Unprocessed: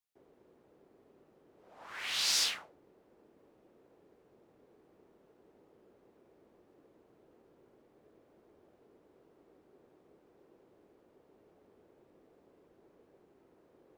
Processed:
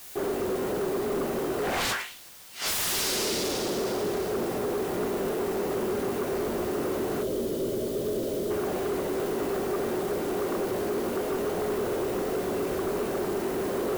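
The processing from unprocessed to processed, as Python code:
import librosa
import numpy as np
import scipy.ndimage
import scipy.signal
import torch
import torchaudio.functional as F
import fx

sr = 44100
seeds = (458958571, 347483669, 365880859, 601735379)

y = fx.high_shelf(x, sr, hz=8600.0, db=11.5)
y = fx.rev_double_slope(y, sr, seeds[0], early_s=0.41, late_s=2.7, knee_db=-27, drr_db=-6.0)
y = fx.over_compress(y, sr, threshold_db=-45.0, ratio=-0.5)
y = fx.fold_sine(y, sr, drive_db=17, ceiling_db=-24.5)
y = fx.spec_box(y, sr, start_s=7.23, length_s=1.27, low_hz=680.0, high_hz=2900.0, gain_db=-12)
y = fx.quant_dither(y, sr, seeds[1], bits=8, dither='triangular')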